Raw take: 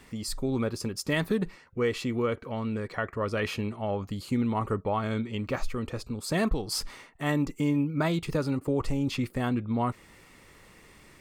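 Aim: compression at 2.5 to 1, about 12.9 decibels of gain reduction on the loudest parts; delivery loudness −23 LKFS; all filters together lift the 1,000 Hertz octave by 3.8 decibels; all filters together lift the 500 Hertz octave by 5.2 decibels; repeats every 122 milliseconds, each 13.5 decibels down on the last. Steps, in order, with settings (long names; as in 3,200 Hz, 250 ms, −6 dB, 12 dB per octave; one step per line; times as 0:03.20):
parametric band 500 Hz +5.5 dB
parametric band 1,000 Hz +3 dB
downward compressor 2.5 to 1, threshold −39 dBFS
repeating echo 122 ms, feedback 21%, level −13.5 dB
level +15 dB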